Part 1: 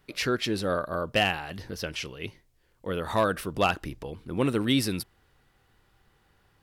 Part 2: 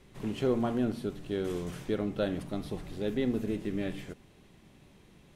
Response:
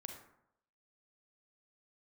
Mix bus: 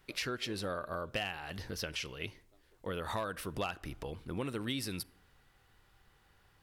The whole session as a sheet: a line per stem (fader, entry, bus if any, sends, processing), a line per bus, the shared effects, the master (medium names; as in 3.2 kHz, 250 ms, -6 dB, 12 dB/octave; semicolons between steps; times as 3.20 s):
-1.0 dB, 0.00 s, send -16.5 dB, none
-12.0 dB, 0.00 s, no send, inverse Chebyshev high-pass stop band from 150 Hz; auto duck -16 dB, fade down 2.00 s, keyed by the first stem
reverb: on, RT60 0.75 s, pre-delay 32 ms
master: peaking EQ 260 Hz -4.5 dB 2.7 oct; compression 4:1, threshold -35 dBFS, peak gain reduction 12.5 dB